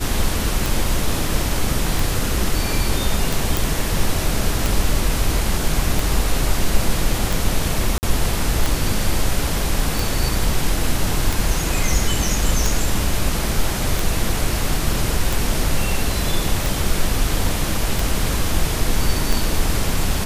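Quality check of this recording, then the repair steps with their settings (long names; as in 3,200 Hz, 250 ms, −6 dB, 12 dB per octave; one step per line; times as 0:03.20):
scratch tick 45 rpm
0:03.57: click
0:07.98–0:08.03: drop-out 49 ms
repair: click removal
repair the gap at 0:07.98, 49 ms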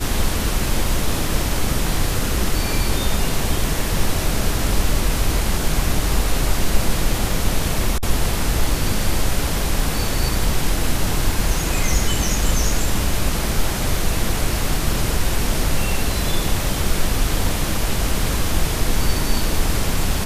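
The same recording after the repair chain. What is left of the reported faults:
none of them is left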